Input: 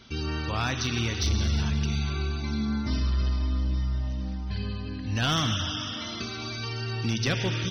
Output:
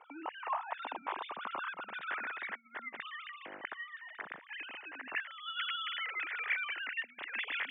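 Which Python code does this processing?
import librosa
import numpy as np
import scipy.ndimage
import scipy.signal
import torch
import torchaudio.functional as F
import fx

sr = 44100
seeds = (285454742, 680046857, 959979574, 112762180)

y = fx.sine_speech(x, sr)
y = fx.over_compress(y, sr, threshold_db=-28.0, ratio=-0.5)
y = fx.filter_sweep_bandpass(y, sr, from_hz=910.0, to_hz=1900.0, start_s=0.96, end_s=2.49, q=3.8)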